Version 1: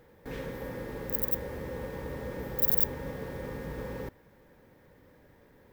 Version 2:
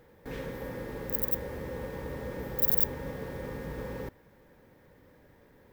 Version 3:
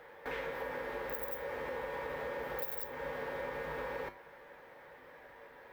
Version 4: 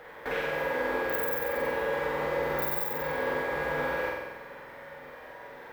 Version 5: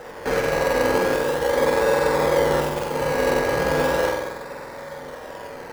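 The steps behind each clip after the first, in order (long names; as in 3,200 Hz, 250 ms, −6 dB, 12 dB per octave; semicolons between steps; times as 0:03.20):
no processing that can be heard
three-way crossover with the lows and the highs turned down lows −21 dB, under 520 Hz, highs −14 dB, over 3,300 Hz; tuned comb filter 51 Hz, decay 0.26 s, harmonics odd, mix 70%; downward compressor 4 to 1, threshold −54 dBFS, peak gain reduction 13.5 dB; level +17 dB
flutter between parallel walls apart 8 metres, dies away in 1.1 s; level +6 dB
running median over 15 samples; in parallel at −5 dB: sample-and-hold swept by an LFO 20×, swing 60% 0.38 Hz; on the sum: level +8 dB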